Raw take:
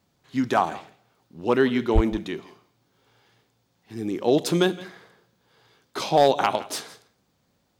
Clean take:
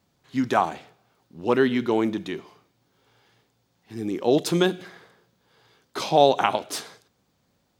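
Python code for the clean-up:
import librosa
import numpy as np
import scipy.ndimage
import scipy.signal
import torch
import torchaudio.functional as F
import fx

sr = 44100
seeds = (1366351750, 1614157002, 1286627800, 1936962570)

y = fx.fix_declip(x, sr, threshold_db=-9.0)
y = fx.fix_deplosive(y, sr, at_s=(1.94,))
y = fx.fix_echo_inverse(y, sr, delay_ms=166, level_db=-19.5)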